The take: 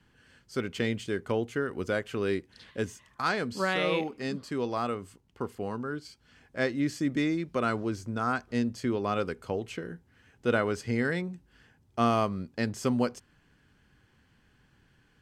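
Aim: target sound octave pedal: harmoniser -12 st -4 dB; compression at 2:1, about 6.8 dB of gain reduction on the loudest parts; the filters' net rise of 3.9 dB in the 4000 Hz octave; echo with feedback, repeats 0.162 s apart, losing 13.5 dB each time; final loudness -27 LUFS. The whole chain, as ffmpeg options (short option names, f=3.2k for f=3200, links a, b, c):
-filter_complex "[0:a]equalizer=f=4k:t=o:g=5,acompressor=threshold=-33dB:ratio=2,aecho=1:1:162|324:0.211|0.0444,asplit=2[a][b];[b]asetrate=22050,aresample=44100,atempo=2,volume=-4dB[c];[a][c]amix=inputs=2:normalize=0,volume=7dB"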